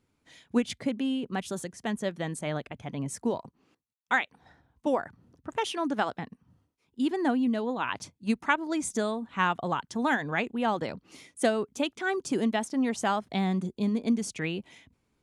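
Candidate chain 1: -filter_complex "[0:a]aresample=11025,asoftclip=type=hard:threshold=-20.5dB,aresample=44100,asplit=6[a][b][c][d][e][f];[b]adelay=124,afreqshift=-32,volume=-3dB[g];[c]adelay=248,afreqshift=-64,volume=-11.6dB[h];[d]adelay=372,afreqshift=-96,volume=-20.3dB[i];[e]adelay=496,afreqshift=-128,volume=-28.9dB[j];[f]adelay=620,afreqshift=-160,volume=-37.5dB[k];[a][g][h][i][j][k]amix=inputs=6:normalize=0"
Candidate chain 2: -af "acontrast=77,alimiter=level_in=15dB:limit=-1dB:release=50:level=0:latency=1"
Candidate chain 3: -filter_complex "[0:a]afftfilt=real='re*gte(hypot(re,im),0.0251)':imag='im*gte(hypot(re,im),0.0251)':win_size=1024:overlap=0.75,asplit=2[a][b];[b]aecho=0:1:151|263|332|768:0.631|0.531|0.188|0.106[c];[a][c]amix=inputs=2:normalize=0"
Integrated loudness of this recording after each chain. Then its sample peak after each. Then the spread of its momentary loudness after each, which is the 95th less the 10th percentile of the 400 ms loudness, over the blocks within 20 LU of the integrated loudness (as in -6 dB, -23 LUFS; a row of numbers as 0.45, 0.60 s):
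-29.0, -11.5, -28.0 LUFS; -14.0, -1.0, -10.0 dBFS; 8, 8, 9 LU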